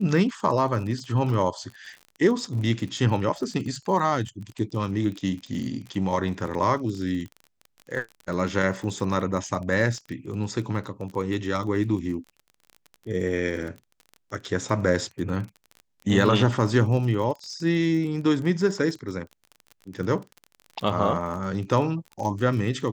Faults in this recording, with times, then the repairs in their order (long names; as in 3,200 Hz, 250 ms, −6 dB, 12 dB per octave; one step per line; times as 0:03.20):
surface crackle 33 per second −33 dBFS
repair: click removal